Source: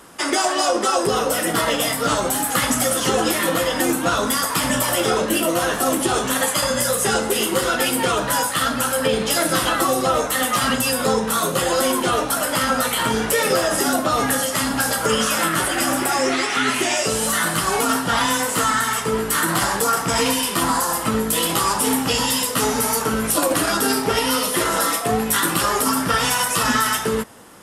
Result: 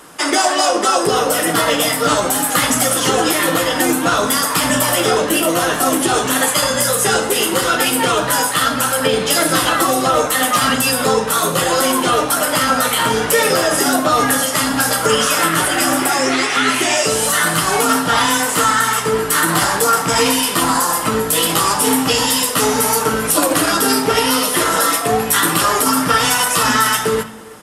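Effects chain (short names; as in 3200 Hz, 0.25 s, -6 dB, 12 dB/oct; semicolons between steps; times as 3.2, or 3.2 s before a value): low shelf 190 Hz -5.5 dB; speakerphone echo 0.33 s, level -20 dB; on a send at -10 dB: reverb RT60 0.95 s, pre-delay 7 ms; on the sum: gain +4.5 dB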